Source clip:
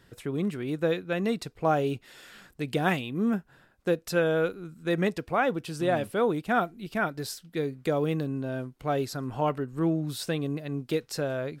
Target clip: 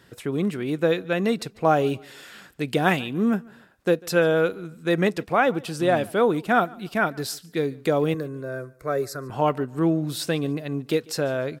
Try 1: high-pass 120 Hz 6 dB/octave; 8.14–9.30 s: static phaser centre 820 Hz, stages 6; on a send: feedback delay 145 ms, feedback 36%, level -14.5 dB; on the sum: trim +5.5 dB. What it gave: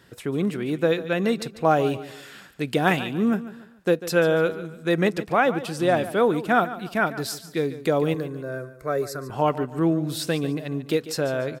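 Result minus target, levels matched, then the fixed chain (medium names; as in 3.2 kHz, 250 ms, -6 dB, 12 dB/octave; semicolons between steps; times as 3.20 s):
echo-to-direct +10 dB
high-pass 120 Hz 6 dB/octave; 8.14–9.30 s: static phaser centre 820 Hz, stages 6; on a send: feedback delay 145 ms, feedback 36%, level -24.5 dB; on the sum: trim +5.5 dB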